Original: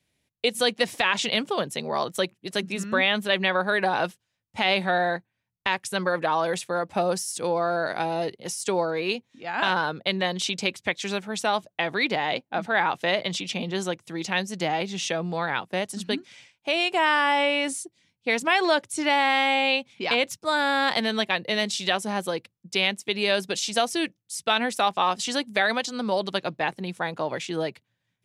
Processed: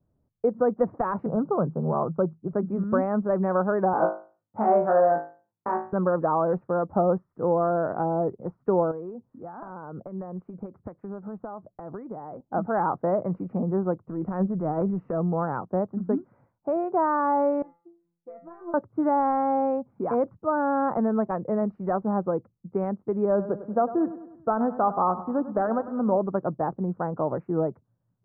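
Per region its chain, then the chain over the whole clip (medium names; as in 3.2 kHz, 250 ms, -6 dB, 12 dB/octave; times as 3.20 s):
1.26–2.53 s: Chebyshev low-pass 1.6 kHz, order 8 + peaking EQ 160 Hz +11.5 dB 0.21 oct
3.93–5.93 s: high-pass 240 Hz + flutter echo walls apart 3.2 m, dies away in 0.37 s
8.91–12.40 s: compression 4:1, threshold -35 dBFS + distance through air 160 m
14.08–15.18 s: transient shaper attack -7 dB, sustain +7 dB + band-stop 810 Hz, Q 9.9
17.62–18.74 s: peaking EQ 74 Hz -10.5 dB 1.9 oct + compression 10:1, threshold -23 dBFS + feedback comb 170 Hz, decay 0.36 s, mix 100%
23.25–26.16 s: low-pass 1.7 kHz 24 dB/octave + feedback delay 100 ms, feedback 51%, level -14 dB
whole clip: elliptic low-pass 1.3 kHz, stop band 60 dB; tilt EQ -2.5 dB/octave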